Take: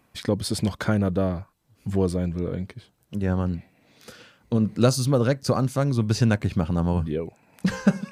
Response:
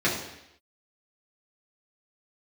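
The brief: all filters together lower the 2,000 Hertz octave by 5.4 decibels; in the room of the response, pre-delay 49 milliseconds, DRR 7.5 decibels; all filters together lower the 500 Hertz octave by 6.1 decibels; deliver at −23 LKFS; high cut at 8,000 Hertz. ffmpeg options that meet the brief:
-filter_complex "[0:a]lowpass=8000,equalizer=frequency=500:width_type=o:gain=-7,equalizer=frequency=2000:width_type=o:gain=-7.5,asplit=2[link_01][link_02];[1:a]atrim=start_sample=2205,adelay=49[link_03];[link_02][link_03]afir=irnorm=-1:irlink=0,volume=-22dB[link_04];[link_01][link_04]amix=inputs=2:normalize=0,volume=2dB"

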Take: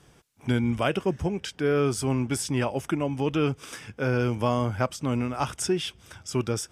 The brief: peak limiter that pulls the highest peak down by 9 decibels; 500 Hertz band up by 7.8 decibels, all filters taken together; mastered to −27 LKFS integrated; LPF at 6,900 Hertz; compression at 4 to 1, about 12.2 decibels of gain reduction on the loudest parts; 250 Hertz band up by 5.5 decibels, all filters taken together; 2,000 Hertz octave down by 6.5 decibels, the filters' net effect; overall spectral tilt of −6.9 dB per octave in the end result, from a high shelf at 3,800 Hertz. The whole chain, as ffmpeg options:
ffmpeg -i in.wav -af "lowpass=6900,equalizer=frequency=250:width_type=o:gain=4,equalizer=frequency=500:width_type=o:gain=9,equalizer=frequency=2000:width_type=o:gain=-9,highshelf=frequency=3800:gain=-7,acompressor=threshold=-29dB:ratio=4,volume=9dB,alimiter=limit=-16.5dB:level=0:latency=1" out.wav

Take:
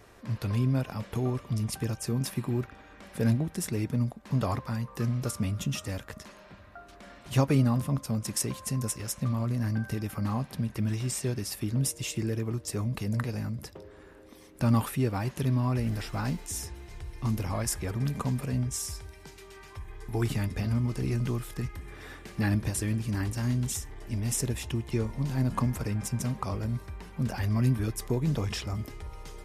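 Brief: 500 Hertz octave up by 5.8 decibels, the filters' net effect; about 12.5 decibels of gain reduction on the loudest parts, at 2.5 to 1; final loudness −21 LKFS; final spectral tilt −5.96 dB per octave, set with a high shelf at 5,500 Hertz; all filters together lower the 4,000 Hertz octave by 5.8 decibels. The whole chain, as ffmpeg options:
ffmpeg -i in.wav -af "equalizer=frequency=500:width_type=o:gain=7.5,equalizer=frequency=4000:width_type=o:gain=-5.5,highshelf=frequency=5500:gain=-5.5,acompressor=threshold=-37dB:ratio=2.5,volume=17.5dB" out.wav

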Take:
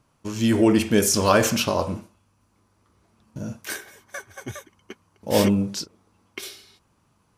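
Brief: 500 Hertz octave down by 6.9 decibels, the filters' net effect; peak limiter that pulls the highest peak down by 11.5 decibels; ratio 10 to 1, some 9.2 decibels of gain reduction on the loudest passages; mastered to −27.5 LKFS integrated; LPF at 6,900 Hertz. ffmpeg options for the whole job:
ffmpeg -i in.wav -af "lowpass=6900,equalizer=frequency=500:width_type=o:gain=-9,acompressor=threshold=-26dB:ratio=10,volume=11dB,alimiter=limit=-17.5dB:level=0:latency=1" out.wav

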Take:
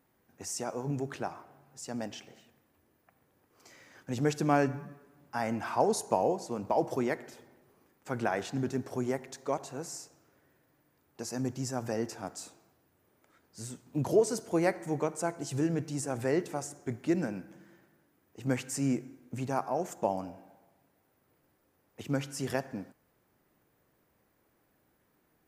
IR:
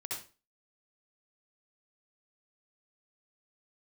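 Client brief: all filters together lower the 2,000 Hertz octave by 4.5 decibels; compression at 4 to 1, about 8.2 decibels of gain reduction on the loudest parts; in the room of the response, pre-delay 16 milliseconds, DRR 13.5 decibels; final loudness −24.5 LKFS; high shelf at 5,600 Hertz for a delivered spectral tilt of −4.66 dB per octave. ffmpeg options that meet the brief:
-filter_complex "[0:a]equalizer=frequency=2000:width_type=o:gain=-7,highshelf=frequency=5600:gain=8.5,acompressor=threshold=-30dB:ratio=4,asplit=2[link_01][link_02];[1:a]atrim=start_sample=2205,adelay=16[link_03];[link_02][link_03]afir=irnorm=-1:irlink=0,volume=-14.5dB[link_04];[link_01][link_04]amix=inputs=2:normalize=0,volume=12dB"

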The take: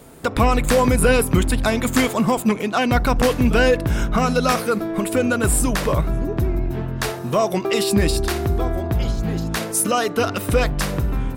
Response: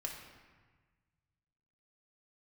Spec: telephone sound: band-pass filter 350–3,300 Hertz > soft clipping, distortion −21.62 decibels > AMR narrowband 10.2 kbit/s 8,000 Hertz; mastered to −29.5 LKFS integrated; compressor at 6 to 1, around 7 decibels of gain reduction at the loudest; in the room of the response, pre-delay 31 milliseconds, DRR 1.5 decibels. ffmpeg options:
-filter_complex "[0:a]acompressor=threshold=-19dB:ratio=6,asplit=2[link_01][link_02];[1:a]atrim=start_sample=2205,adelay=31[link_03];[link_02][link_03]afir=irnorm=-1:irlink=0,volume=-1dB[link_04];[link_01][link_04]amix=inputs=2:normalize=0,highpass=350,lowpass=3300,asoftclip=threshold=-14dB,volume=-2dB" -ar 8000 -c:a libopencore_amrnb -b:a 10200

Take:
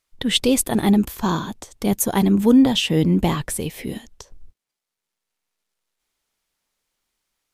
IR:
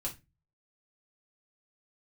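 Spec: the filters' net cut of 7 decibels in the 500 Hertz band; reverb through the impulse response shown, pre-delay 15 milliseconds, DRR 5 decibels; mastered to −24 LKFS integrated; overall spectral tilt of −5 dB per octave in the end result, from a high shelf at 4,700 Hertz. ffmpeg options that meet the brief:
-filter_complex "[0:a]equalizer=frequency=500:width_type=o:gain=-8.5,highshelf=frequency=4700:gain=-3,asplit=2[link_01][link_02];[1:a]atrim=start_sample=2205,adelay=15[link_03];[link_02][link_03]afir=irnorm=-1:irlink=0,volume=-6dB[link_04];[link_01][link_04]amix=inputs=2:normalize=0,volume=-5.5dB"

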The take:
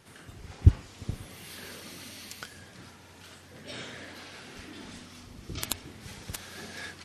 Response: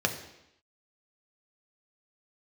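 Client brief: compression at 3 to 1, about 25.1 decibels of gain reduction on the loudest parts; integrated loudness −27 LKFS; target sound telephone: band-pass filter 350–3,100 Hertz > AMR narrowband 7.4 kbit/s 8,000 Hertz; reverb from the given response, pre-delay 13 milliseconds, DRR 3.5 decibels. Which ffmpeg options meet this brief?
-filter_complex "[0:a]acompressor=threshold=-46dB:ratio=3,asplit=2[link_01][link_02];[1:a]atrim=start_sample=2205,adelay=13[link_03];[link_02][link_03]afir=irnorm=-1:irlink=0,volume=-13.5dB[link_04];[link_01][link_04]amix=inputs=2:normalize=0,highpass=350,lowpass=3100,volume=27.5dB" -ar 8000 -c:a libopencore_amrnb -b:a 7400

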